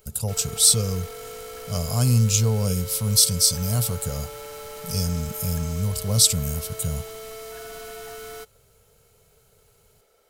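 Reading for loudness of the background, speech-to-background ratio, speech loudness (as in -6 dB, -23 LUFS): -37.5 LUFS, 16.0 dB, -21.5 LUFS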